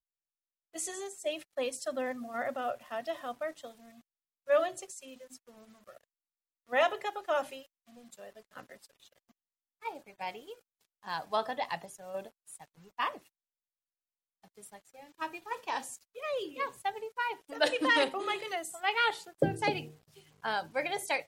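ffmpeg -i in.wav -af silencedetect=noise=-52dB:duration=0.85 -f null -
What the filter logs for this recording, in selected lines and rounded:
silence_start: 13.27
silence_end: 14.44 | silence_duration: 1.16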